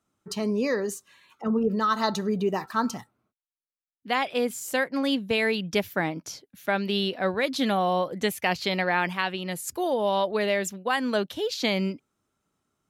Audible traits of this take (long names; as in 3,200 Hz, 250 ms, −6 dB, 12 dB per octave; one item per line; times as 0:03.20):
background noise floor −96 dBFS
spectral slope −4.0 dB per octave